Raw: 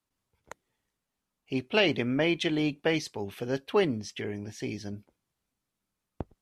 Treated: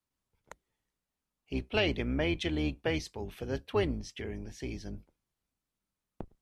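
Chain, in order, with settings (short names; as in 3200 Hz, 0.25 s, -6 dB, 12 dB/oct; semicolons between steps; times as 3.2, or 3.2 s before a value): octaver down 2 oct, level -1 dB; gain -5 dB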